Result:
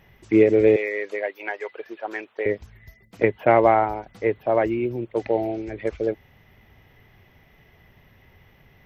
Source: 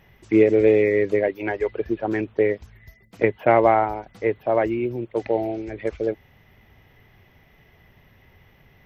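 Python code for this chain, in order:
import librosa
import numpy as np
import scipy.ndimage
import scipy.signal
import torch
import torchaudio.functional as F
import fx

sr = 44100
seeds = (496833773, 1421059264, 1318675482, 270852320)

y = fx.highpass(x, sr, hz=720.0, slope=12, at=(0.76, 2.46))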